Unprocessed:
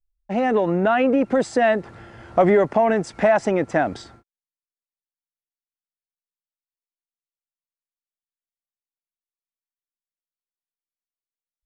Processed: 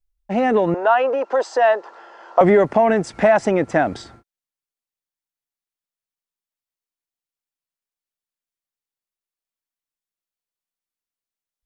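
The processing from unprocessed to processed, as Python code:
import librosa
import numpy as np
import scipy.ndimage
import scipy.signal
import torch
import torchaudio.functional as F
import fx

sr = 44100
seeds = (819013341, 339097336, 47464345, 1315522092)

y = fx.cabinet(x, sr, low_hz=450.0, low_slope=24, high_hz=6500.0, hz=(970.0, 2200.0, 3700.0), db=(8, -9, -4), at=(0.74, 2.41))
y = y * librosa.db_to_amplitude(2.5)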